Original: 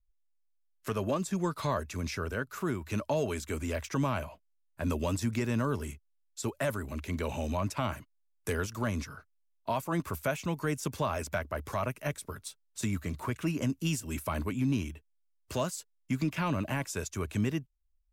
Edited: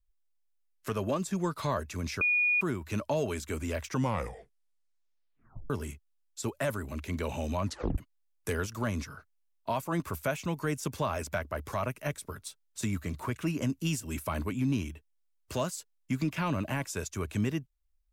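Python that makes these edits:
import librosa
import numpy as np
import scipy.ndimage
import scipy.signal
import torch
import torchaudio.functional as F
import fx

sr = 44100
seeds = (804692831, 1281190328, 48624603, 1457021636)

y = fx.edit(x, sr, fx.bleep(start_s=2.21, length_s=0.4, hz=2450.0, db=-23.0),
    fx.tape_stop(start_s=3.9, length_s=1.8),
    fx.tape_stop(start_s=7.65, length_s=0.33), tone=tone)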